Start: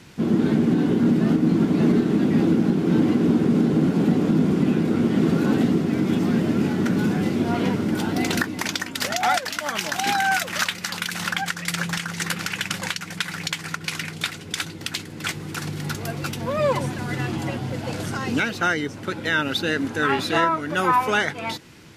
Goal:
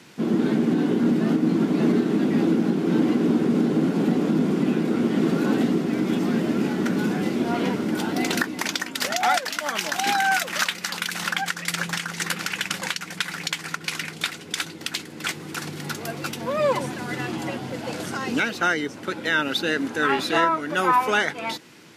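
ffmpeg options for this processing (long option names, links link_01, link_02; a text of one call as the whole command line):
ffmpeg -i in.wav -af "highpass=200" out.wav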